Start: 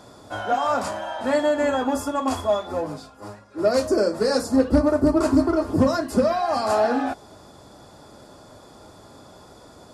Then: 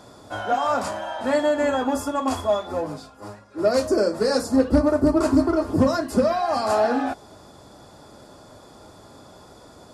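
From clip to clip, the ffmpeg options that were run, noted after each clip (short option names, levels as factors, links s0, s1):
-af anull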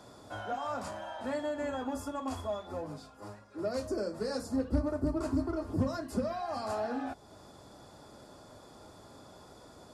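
-filter_complex "[0:a]acrossover=split=180[s0][s1];[s1]acompressor=threshold=0.01:ratio=1.5[s2];[s0][s2]amix=inputs=2:normalize=0,volume=0.473"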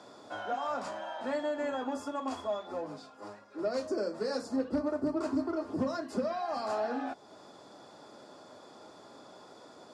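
-af "highpass=240,lowpass=6500,volume=1.26"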